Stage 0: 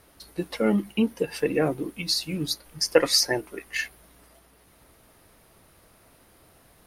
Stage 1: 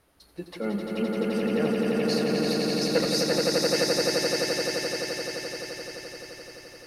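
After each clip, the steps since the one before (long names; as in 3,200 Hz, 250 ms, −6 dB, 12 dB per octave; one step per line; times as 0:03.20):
high-shelf EQ 7,900 Hz −5 dB
on a send: echo that builds up and dies away 86 ms, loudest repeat 8, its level −3 dB
on the sum: level −7.5 dB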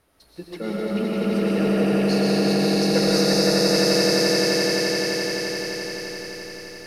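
comb and all-pass reverb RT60 2.5 s, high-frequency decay 0.95×, pre-delay 80 ms, DRR −4.5 dB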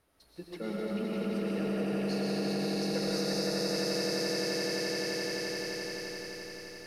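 downward compressor 2.5 to 1, threshold −23 dBFS, peak gain reduction 6 dB
level −7.5 dB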